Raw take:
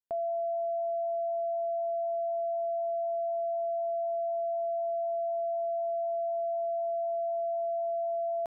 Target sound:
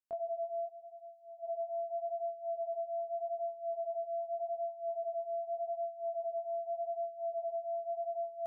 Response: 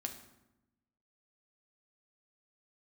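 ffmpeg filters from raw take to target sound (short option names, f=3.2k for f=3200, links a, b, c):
-filter_complex "[0:a]asplit=3[a][b][c];[a]afade=t=out:st=0.65:d=0.02[d];[b]equalizer=f=660:t=o:w=0.77:g=-13.5,afade=t=in:st=0.65:d=0.02,afade=t=out:st=1.42:d=0.02[e];[c]afade=t=in:st=1.42:d=0.02[f];[d][e][f]amix=inputs=3:normalize=0,flanger=delay=20:depth=6.4:speed=0.84,volume=-3dB"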